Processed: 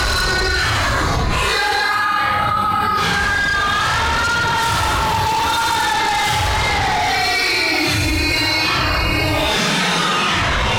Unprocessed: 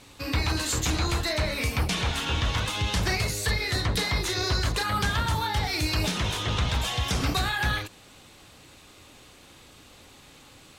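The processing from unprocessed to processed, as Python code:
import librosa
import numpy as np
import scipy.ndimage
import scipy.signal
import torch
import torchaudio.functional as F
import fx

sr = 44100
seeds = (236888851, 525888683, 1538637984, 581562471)

p1 = x * (1.0 - 0.92 / 2.0 + 0.92 / 2.0 * np.cos(2.0 * np.pi * 0.92 * (np.arange(len(x)) / sr)))
p2 = fx.paulstretch(p1, sr, seeds[0], factor=6.2, window_s=0.05, from_s=4.53)
p3 = fx.peak_eq(p2, sr, hz=1300.0, db=12.0, octaves=2.9)
p4 = fx.fold_sine(p3, sr, drive_db=12, ceiling_db=-12.0)
p5 = p3 + (p4 * librosa.db_to_amplitude(-10.5))
p6 = fx.env_flatten(p5, sr, amount_pct=100)
y = p6 * librosa.db_to_amplitude(-3.5)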